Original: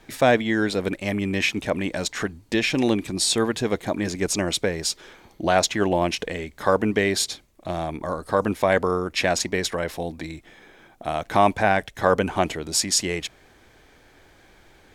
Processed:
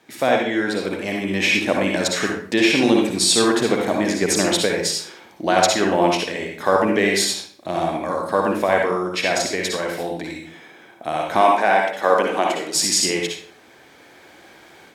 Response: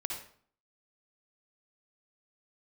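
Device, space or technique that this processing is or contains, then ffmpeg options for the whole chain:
far laptop microphone: -filter_complex "[1:a]atrim=start_sample=2205[a];[0:a][a]afir=irnorm=-1:irlink=0,highpass=180,dynaudnorm=f=620:g=3:m=9dB,asettb=1/sr,asplit=3[b][c][d];[b]atrim=end=11.414[e];[c]atrim=start=11.41:end=12.75,asetpts=PTS-STARTPTS,afade=t=in:d=0.004:c=qsin,afade=t=out:st=1.336:d=0.004:c=qsin,highpass=280[f];[d]atrim=start=12.746[g];[e][f]acrossfade=d=0.004:c1=hsin:c2=qsin[h];[h][g]acrossfade=d=0.004:c1=qsin:c2=hsin,volume=-1dB"

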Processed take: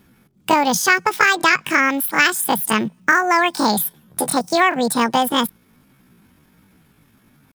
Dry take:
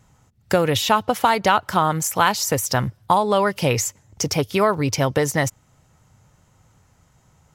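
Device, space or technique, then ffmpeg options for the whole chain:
chipmunk voice: -filter_complex "[0:a]asetrate=76340,aresample=44100,atempo=0.577676,asettb=1/sr,asplit=3[a][b][c];[a]atrim=end=3.794[d];[b]atrim=start=3.79:end=4.28,asetpts=PTS-STARTPTS,afade=t=in:d=0.004:c=qsin,afade=t=out:st=0.486:d=0.004:c=qsin,asplit=2[e][f];[f]adelay=14,volume=-6dB[g];[e][g]amix=inputs=2:normalize=0,atrim=end_sample=21609[h];[c]atrim=start=4.276[i];[d][h]acrossfade=d=0.004:c1=hsin:c2=qsin[j];[j][i]acrossfade=d=0.004:c1=qsin:c2=hsin,volume=2.5dB"

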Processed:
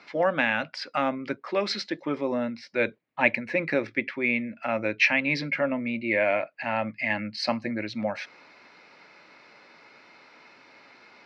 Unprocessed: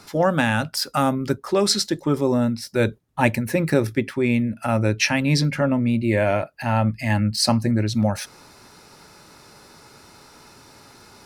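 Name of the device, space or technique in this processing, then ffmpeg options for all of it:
phone earpiece: -af "highpass=350,equalizer=f=400:t=q:w=4:g=-7,equalizer=f=850:t=q:w=4:g=-5,equalizer=f=1.3k:t=q:w=4:g=-4,equalizer=f=2.2k:t=q:w=4:g=8,equalizer=f=3.5k:t=q:w=4:g=-5,lowpass=f=3.9k:w=0.5412,lowpass=f=3.9k:w=1.3066,volume=-1.5dB"

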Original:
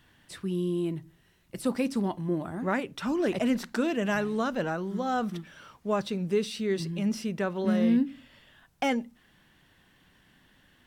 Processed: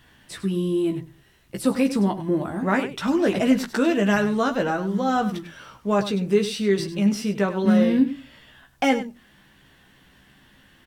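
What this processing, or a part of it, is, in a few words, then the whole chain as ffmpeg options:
slapback doubling: -filter_complex "[0:a]asplit=3[a][b][c];[b]adelay=15,volume=-5dB[d];[c]adelay=100,volume=-12dB[e];[a][d][e]amix=inputs=3:normalize=0,volume=5.5dB"

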